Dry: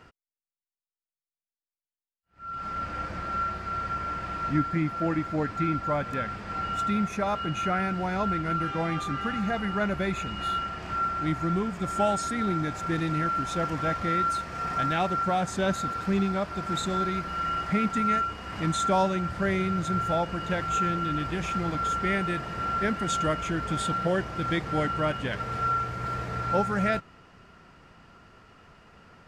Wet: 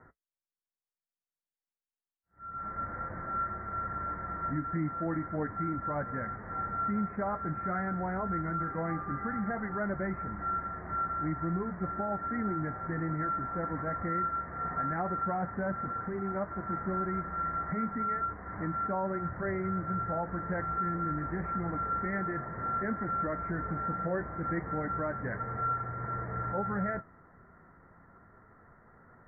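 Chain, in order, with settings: steep low-pass 2 kHz 96 dB/octave; peak limiter -20.5 dBFS, peak gain reduction 7 dB; flange 0.31 Hz, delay 7.6 ms, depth 5.2 ms, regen -54%

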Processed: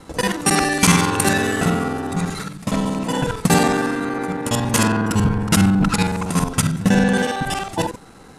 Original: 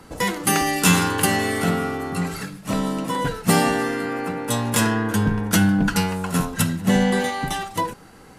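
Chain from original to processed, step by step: time reversed locally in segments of 46 ms; formant shift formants -2 st; trim +3 dB

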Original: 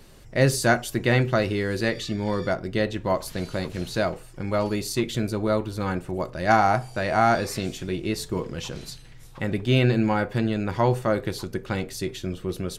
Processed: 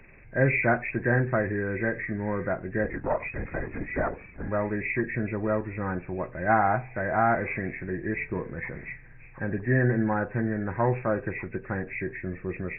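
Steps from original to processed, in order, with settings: knee-point frequency compression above 1.5 kHz 4:1; 2.84–4.48 s: LPC vocoder at 8 kHz whisper; trim -3.5 dB

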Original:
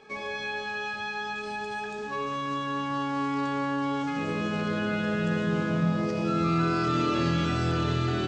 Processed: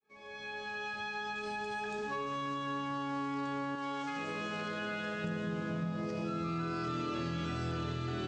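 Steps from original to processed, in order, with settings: fade-in on the opening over 2.03 s; 3.75–5.24 s: bass shelf 370 Hz -11.5 dB; compression 4:1, threshold -39 dBFS, peak gain reduction 15 dB; trim +3 dB

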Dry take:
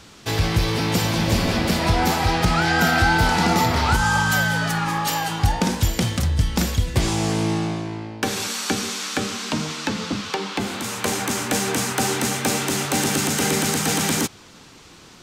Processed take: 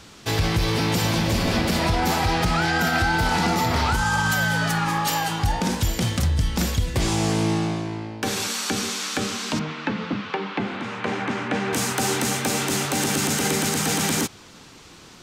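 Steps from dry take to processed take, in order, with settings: 9.59–11.73 s: Chebyshev band-pass 130–2300 Hz, order 2; peak limiter -12.5 dBFS, peak gain reduction 5 dB

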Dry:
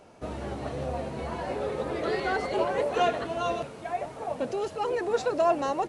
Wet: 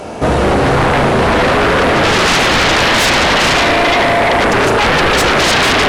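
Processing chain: Chebyshev shaper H 5 -10 dB, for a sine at -13 dBFS; spring tank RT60 3.7 s, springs 36 ms, chirp 30 ms, DRR -1 dB; sine folder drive 16 dB, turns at -6.5 dBFS; trim -1.5 dB

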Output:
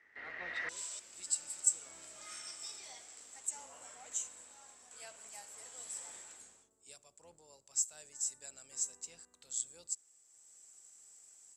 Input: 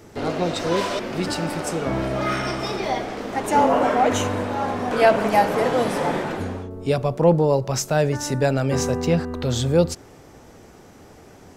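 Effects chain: octave divider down 2 oct, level +4 dB; level rider gain up to 10.5 dB; band-pass filter 1.9 kHz, Q 16, from 0.69 s 7.7 kHz; trim +2.5 dB

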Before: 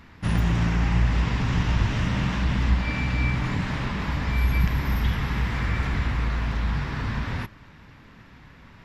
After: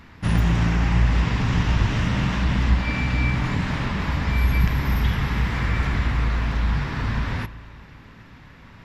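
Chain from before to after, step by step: spring tank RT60 2.9 s, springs 36 ms, chirp 45 ms, DRR 14.5 dB; trim +2.5 dB

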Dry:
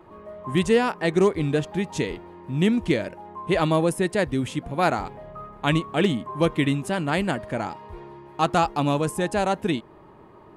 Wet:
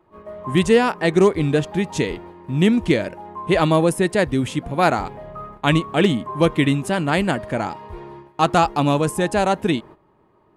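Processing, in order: gate -43 dBFS, range -14 dB; trim +4.5 dB

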